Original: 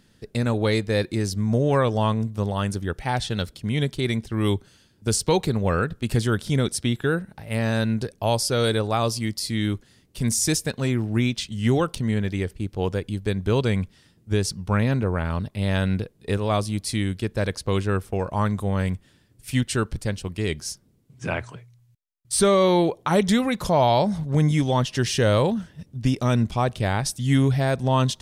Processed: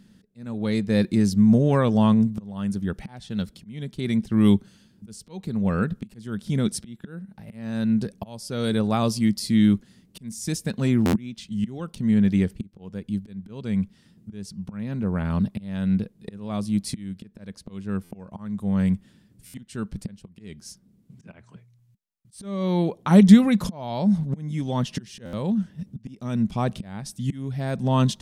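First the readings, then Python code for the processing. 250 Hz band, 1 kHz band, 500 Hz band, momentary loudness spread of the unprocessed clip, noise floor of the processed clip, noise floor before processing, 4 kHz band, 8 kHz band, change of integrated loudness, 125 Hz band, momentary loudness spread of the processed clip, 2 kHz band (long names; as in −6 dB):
+3.5 dB, −7.0 dB, −7.0 dB, 8 LU, −59 dBFS, −59 dBFS, −7.5 dB, −9.5 dB, 0.0 dB, −3.0 dB, 19 LU, −8.0 dB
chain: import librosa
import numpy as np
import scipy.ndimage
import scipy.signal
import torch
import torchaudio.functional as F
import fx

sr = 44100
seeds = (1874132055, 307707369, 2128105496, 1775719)

y = fx.auto_swell(x, sr, attack_ms=699.0)
y = fx.peak_eq(y, sr, hz=200.0, db=14.5, octaves=0.67)
y = fx.buffer_glitch(y, sr, at_s=(11.05, 18.03, 19.46, 25.25), block=512, repeats=6)
y = y * 10.0 ** (-2.5 / 20.0)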